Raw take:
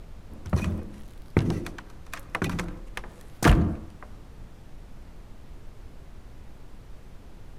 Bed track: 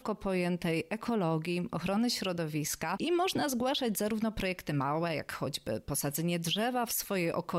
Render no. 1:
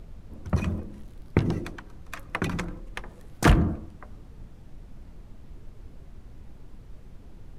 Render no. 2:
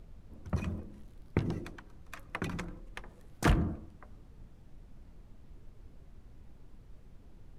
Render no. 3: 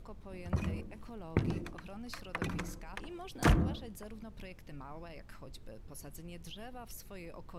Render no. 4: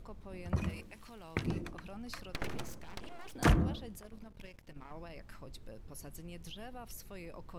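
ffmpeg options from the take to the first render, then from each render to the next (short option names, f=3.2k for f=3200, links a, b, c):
-af "afftdn=nr=6:nf=-48"
-af "volume=-8dB"
-filter_complex "[1:a]volume=-17dB[a];[0:a][a]amix=inputs=2:normalize=0"
-filter_complex "[0:a]asettb=1/sr,asplit=3[a][b][c];[a]atrim=end=0.694[d];[b]atrim=start=0.69:end=1.46,asetpts=PTS-STARTPTS,afade=t=in:d=0.004:c=qsin,afade=t=out:st=0.766:d=0.004:c=qsin,tiltshelf=f=1.2k:g=-7[e];[c]atrim=start=1.456[f];[d][e]acrossfade=d=0.004:c1=hsin:c2=qsin[g];[g][f]acrossfade=d=0.004:c1=qsin:c2=hsin,asplit=3[h][i][j];[h]afade=t=out:st=2.31:d=0.02[k];[i]aeval=exprs='abs(val(0))':c=same,afade=t=in:st=2.31:d=0.02,afade=t=out:st=3.33:d=0.02[l];[j]afade=t=in:st=3.33:d=0.02[m];[k][l][m]amix=inputs=3:normalize=0,asettb=1/sr,asplit=3[n][o][p];[n]atrim=end=4.004[q];[o]atrim=start=4:end=4.93,asetpts=PTS-STARTPTS,afade=t=in:d=0.004:c=qsin,afade=t=out:st=0.926:d=0.004:c=qsin,aeval=exprs='if(lt(val(0),0),0.251*val(0),val(0))':c=same[r];[p]atrim=start=4.926[s];[q][r]acrossfade=d=0.004:c1=hsin:c2=qsin[t];[t][s]acrossfade=d=0.004:c1=qsin:c2=hsin"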